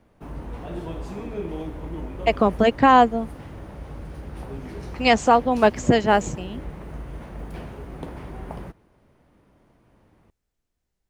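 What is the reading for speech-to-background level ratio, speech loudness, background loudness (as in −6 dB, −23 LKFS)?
17.5 dB, −19.0 LKFS, −36.5 LKFS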